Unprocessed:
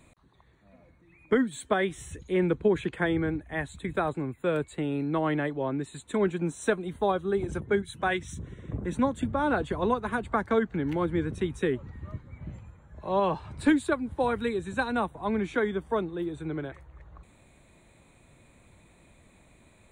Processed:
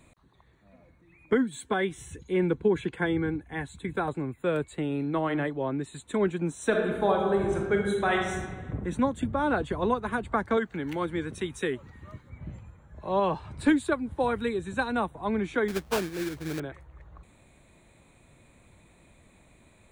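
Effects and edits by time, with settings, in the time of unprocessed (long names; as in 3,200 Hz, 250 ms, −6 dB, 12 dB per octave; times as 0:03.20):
0:01.33–0:04.08: notch comb filter 620 Hz
0:04.88–0:05.48: hum removal 154.9 Hz, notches 37
0:06.66–0:08.51: thrown reverb, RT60 1.4 s, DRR 0.5 dB
0:10.57–0:12.30: spectral tilt +2 dB per octave
0:15.68–0:16.60: sample-rate reduction 2,000 Hz, jitter 20%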